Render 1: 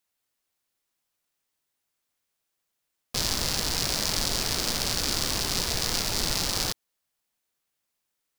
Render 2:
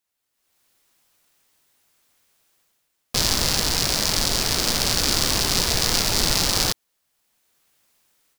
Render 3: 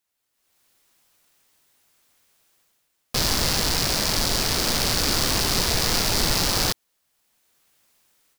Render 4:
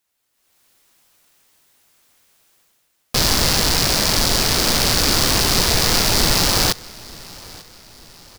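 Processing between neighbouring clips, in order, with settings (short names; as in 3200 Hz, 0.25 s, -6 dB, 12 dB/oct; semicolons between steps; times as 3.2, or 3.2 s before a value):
AGC gain up to 16.5 dB; gain -1 dB
soft clip -11 dBFS, distortion -12 dB; gain +1 dB
feedback echo 0.893 s, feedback 47%, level -22 dB; gain +5.5 dB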